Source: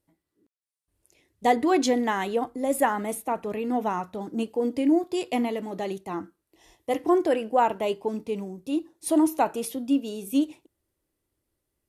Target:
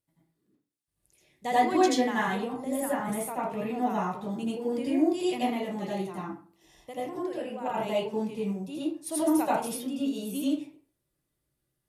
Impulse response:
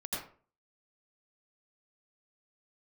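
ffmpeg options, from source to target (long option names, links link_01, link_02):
-filter_complex "[0:a]asettb=1/sr,asplit=3[link_01][link_02][link_03];[link_01]atrim=end=2.194[link_04];[link_02]atrim=start=2.19:end=3,asetpts=PTS-STARTPTS,afade=type=in:duration=0.004:curve=qsin,afade=type=out:start_time=0.806:duration=0.004:curve=qsin,acrossover=split=320[link_05][link_06];[link_06]acompressor=threshold=-28dB:ratio=2.5[link_07];[link_05][link_07]amix=inputs=2:normalize=0[link_08];[link_03]atrim=start=2.996[link_09];[link_04][link_08]acrossfade=duration=0.004:curve1=hsin:curve2=qsin[link_10];[link_10][link_09]acrossfade=duration=0.004:curve1=qsin:curve2=hsin,equalizer=frequency=140:width_type=o:width=0.55:gain=11.5,asettb=1/sr,asplit=3[link_11][link_12][link_13];[link_11]atrim=end=5.954[link_14];[link_12]atrim=start=5.95:end=7.66,asetpts=PTS-STARTPTS,afade=type=in:duration=0.004:curve=qsin,afade=type=out:start_time=1.706:duration=0.004:curve=qsin,acompressor=threshold=-27dB:ratio=10[link_15];[link_13]atrim=start=7.656[link_16];[link_14][link_15]acrossfade=duration=0.004:curve1=hsin:curve2=qsin[link_17];[link_17][link_16]acrossfade=duration=0.004:curve1=qsin:curve2=hsin,tiltshelf=frequency=1200:gain=-3.5[link_18];[1:a]atrim=start_sample=2205[link_19];[link_18][link_19]afir=irnorm=-1:irlink=0,volume=-4.5dB"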